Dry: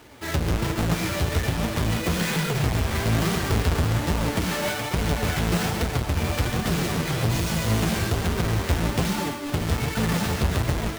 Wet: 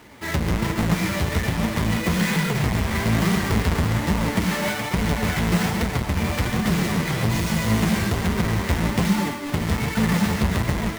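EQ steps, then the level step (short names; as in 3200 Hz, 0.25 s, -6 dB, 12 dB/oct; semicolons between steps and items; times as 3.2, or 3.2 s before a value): thirty-one-band EQ 200 Hz +10 dB, 1000 Hz +4 dB, 2000 Hz +6 dB; 0.0 dB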